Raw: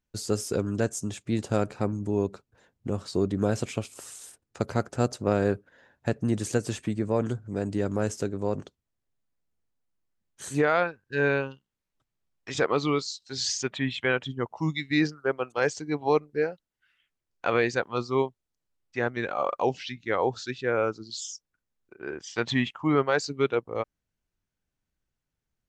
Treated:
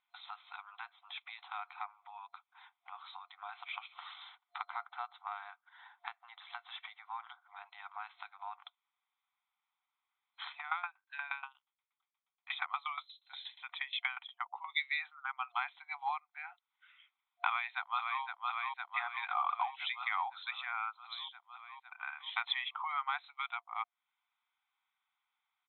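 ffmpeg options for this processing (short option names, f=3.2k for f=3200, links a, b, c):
-filter_complex "[0:a]asettb=1/sr,asplit=3[a][b][c];[a]atrim=end=3.934[d];[b]atrim=start=3.93:end=7.59,asetpts=PTS-STARTPTS,afade=t=in:d=0.004:c=qsin,afade=t=out:st=3.656:d=0.004:c=qsin,bandreject=f=2.5k:w=9.5[e];[c]atrim=start=7.586[f];[d][e]acrossfade=d=0.004:c1=hsin:c2=qsin[g];[g][f]acrossfade=d=0.004:c1=qsin:c2=hsin,asplit=3[h][i][j];[h]afade=t=out:st=10.51:d=0.02[k];[i]aeval=exprs='val(0)*pow(10,-21*if(lt(mod(8.4*n/s,1),2*abs(8.4)/1000),1-mod(8.4*n/s,1)/(2*abs(8.4)/1000),(mod(8.4*n/s,1)-2*abs(8.4)/1000)/(1-2*abs(8.4)/1000))/20)':c=same,afade=t=in:st=10.51:d=0.02,afade=t=out:st=14.68:d=0.02[l];[j]afade=t=in:st=14.68:d=0.02[m];[k][l][m]amix=inputs=3:normalize=0,asplit=2[n][o];[o]afade=t=in:st=17.46:d=0.01,afade=t=out:st=18.22:d=0.01,aecho=0:1:510|1020|1530|2040|2550|3060|3570|4080|4590:0.473151|0.307548|0.199906|0.129939|0.0844605|0.0548993|0.0356845|0.023195|0.0150767[p];[n][p]amix=inputs=2:normalize=0,acompressor=threshold=-38dB:ratio=4,afftfilt=real='re*between(b*sr/4096,700,4100)':imag='im*between(b*sr/4096,700,4100)':win_size=4096:overlap=0.75,aecho=1:1:0.9:0.68,volume=6dB"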